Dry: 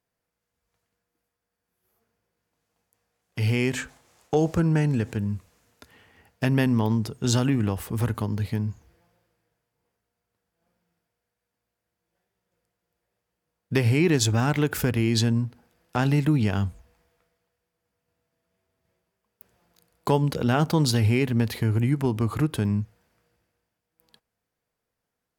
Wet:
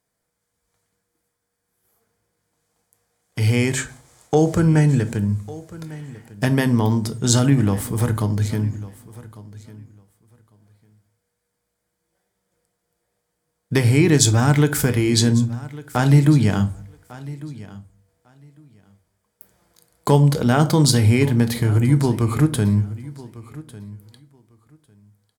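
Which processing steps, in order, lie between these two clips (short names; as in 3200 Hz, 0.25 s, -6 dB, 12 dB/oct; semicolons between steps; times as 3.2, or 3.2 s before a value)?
bell 8600 Hz +8 dB 0.76 oct; notch 2700 Hz, Q 7.8; feedback echo 1.15 s, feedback 16%, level -19 dB; reverb RT60 0.40 s, pre-delay 7 ms, DRR 10 dB; gain +4.5 dB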